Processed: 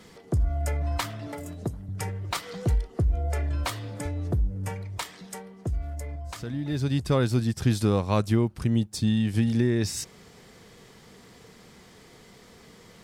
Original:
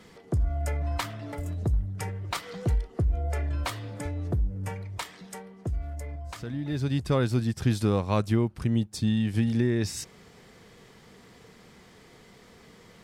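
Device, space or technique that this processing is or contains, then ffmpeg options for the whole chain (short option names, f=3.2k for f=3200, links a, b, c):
exciter from parts: -filter_complex "[0:a]asplit=2[a][b];[b]highpass=3.1k,asoftclip=type=tanh:threshold=-36dB,volume=-7dB[c];[a][c]amix=inputs=2:normalize=0,asettb=1/sr,asplit=3[d][e][f];[d]atrim=end=1.274[g];[e]atrim=start=1.27:end=1.89,asetpts=PTS-STARTPTS,afade=t=in:d=0.004:c=qsin,afade=t=out:st=0.616:d=0.004:c=qsin,highpass=150[h];[f]atrim=start=1.886[i];[g][h]acrossfade=d=0.004:c1=hsin:c2=qsin[j];[j][i]acrossfade=d=0.004:c1=qsin:c2=hsin,volume=1.5dB"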